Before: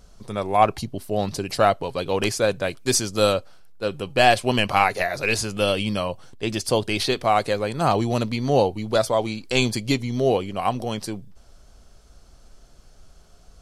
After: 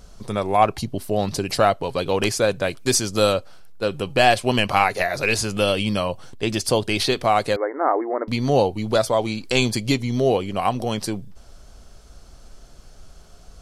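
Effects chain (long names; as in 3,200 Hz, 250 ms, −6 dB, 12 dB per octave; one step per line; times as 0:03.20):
in parallel at +1 dB: downward compressor, threshold −27 dBFS, peak gain reduction 15 dB
0:07.56–0:08.28: on the sum: linear-phase brick-wall band-pass 260–2,200 Hz
level −1.5 dB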